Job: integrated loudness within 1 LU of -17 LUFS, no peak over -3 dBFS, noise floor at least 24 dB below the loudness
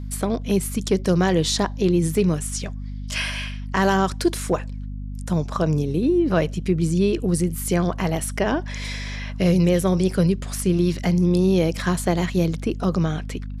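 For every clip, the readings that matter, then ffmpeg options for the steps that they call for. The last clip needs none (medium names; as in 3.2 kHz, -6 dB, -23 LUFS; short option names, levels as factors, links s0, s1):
hum 50 Hz; highest harmonic 250 Hz; hum level -28 dBFS; loudness -22.0 LUFS; peak level -9.0 dBFS; loudness target -17.0 LUFS
-> -af "bandreject=f=50:t=h:w=4,bandreject=f=100:t=h:w=4,bandreject=f=150:t=h:w=4,bandreject=f=200:t=h:w=4,bandreject=f=250:t=h:w=4"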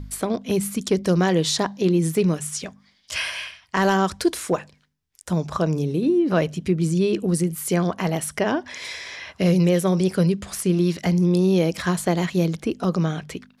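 hum not found; loudness -22.5 LUFS; peak level -9.0 dBFS; loudness target -17.0 LUFS
-> -af "volume=1.88"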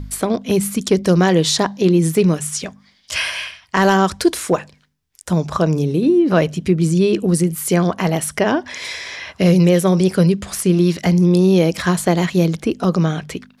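loudness -17.0 LUFS; peak level -3.5 dBFS; noise floor -56 dBFS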